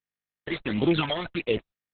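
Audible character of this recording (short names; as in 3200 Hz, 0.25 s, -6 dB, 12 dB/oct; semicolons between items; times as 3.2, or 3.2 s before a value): a quantiser's noise floor 6-bit, dither none; phasing stages 12, 1.5 Hz, lowest notch 240–1600 Hz; Opus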